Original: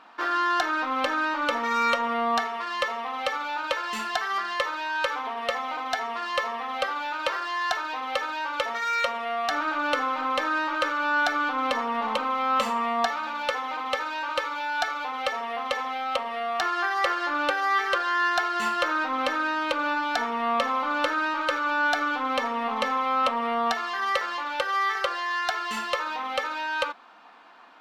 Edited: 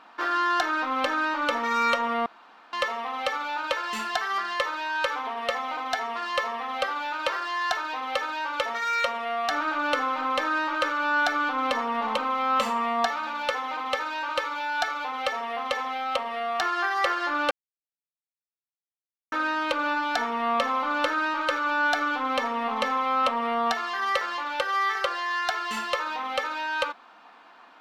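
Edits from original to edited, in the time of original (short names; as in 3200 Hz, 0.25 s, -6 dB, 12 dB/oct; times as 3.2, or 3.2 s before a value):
2.26–2.73 room tone
17.51–19.32 mute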